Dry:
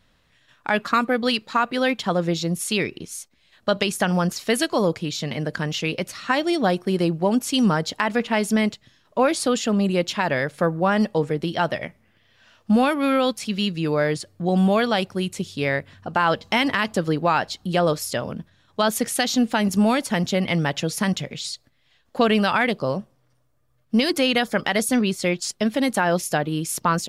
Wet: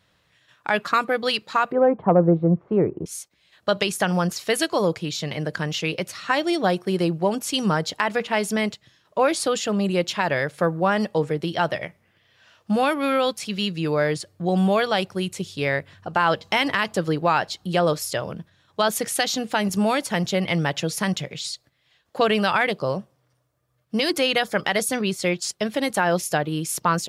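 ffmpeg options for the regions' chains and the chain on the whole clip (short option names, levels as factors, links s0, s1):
-filter_complex "[0:a]asettb=1/sr,asplit=3[s0][s1][s2];[s0]atrim=end=1.724[s3];[s1]atrim=start=1.72:end=3.06,asetpts=PTS-STARTPTS,afade=t=in:d=0.004:c=qsin,afade=t=out:st=1.336:d=0.004:c=qsin,lowpass=f=1000:w=0.5412,lowpass=f=1000:w=1.3066,acontrast=82[s4];[s2]atrim=start=3.056[s5];[s3][s4]acrossfade=d=0.004:c1=hsin:c2=qsin[s6];[s6][s5]acrossfade=d=0.004:c1=qsin:c2=hsin,highpass=81,equalizer=f=240:w=6.4:g=-13"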